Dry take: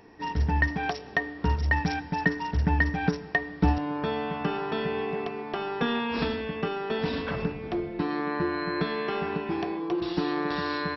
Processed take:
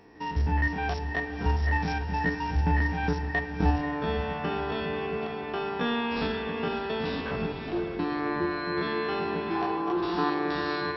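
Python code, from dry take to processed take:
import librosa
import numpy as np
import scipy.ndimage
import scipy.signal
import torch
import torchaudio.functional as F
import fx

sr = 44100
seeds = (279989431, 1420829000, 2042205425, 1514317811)

y = fx.spec_steps(x, sr, hold_ms=50)
y = fx.band_shelf(y, sr, hz=1100.0, db=8.5, octaves=1.3, at=(9.55, 10.3))
y = fx.echo_diffused(y, sr, ms=540, feedback_pct=40, wet_db=-8.5)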